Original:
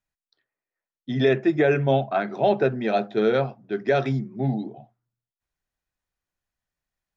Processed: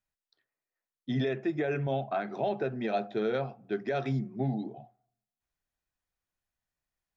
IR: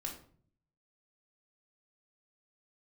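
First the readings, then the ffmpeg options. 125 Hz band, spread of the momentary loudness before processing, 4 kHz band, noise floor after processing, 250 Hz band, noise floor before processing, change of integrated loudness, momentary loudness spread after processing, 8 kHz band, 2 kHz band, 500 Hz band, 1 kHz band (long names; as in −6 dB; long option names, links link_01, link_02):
−7.0 dB, 9 LU, −9.0 dB, below −85 dBFS, −7.5 dB, below −85 dBFS, −9.0 dB, 5 LU, can't be measured, −10.0 dB, −10.0 dB, −8.5 dB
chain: -filter_complex "[0:a]alimiter=limit=-18dB:level=0:latency=1:release=232,asplit=2[link_01][link_02];[link_02]asplit=3[link_03][link_04][link_05];[link_03]bandpass=frequency=730:width_type=q:width=8,volume=0dB[link_06];[link_04]bandpass=frequency=1090:width_type=q:width=8,volume=-6dB[link_07];[link_05]bandpass=frequency=2440:width_type=q:width=8,volume=-9dB[link_08];[link_06][link_07][link_08]amix=inputs=3:normalize=0[link_09];[1:a]atrim=start_sample=2205,asetrate=31311,aresample=44100[link_10];[link_09][link_10]afir=irnorm=-1:irlink=0,volume=-11.5dB[link_11];[link_01][link_11]amix=inputs=2:normalize=0,volume=-3.5dB"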